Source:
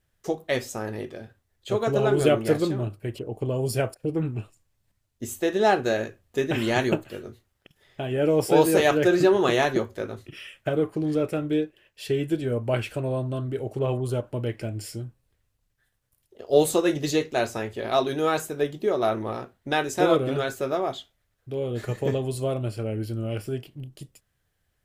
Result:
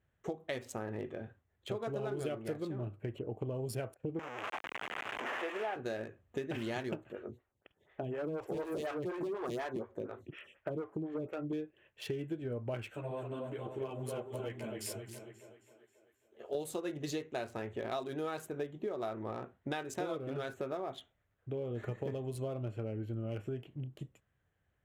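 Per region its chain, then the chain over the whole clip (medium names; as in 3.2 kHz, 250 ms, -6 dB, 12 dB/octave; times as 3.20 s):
4.19–5.76 s: one-bit delta coder 16 kbps, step -21.5 dBFS + high-pass 530 Hz
7.12–11.53 s: hard clipper -21.5 dBFS + lamp-driven phase shifter 4.1 Hz
12.90–16.55 s: tilt EQ +2.5 dB/octave + two-band feedback delay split 310 Hz, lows 133 ms, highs 268 ms, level -5.5 dB + three-phase chorus
whole clip: local Wiener filter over 9 samples; high-pass 52 Hz; compression 6:1, threshold -33 dBFS; trim -2.5 dB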